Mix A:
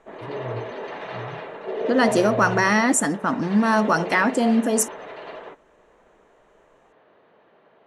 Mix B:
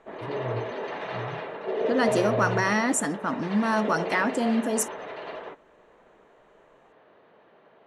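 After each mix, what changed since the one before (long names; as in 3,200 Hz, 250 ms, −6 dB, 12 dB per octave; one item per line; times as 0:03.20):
second voice −5.5 dB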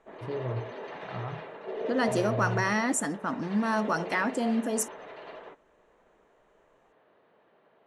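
second voice −3.0 dB
background −7.0 dB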